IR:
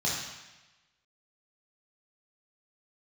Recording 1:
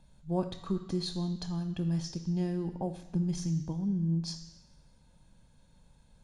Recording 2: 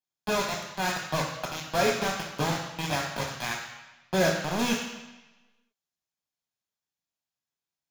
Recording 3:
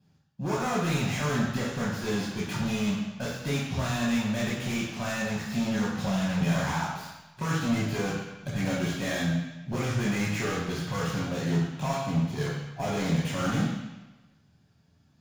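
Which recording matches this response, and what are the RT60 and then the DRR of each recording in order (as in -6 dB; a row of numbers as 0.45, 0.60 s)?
3; 1.1, 1.1, 1.1 s; 8.0, -0.5, -6.0 dB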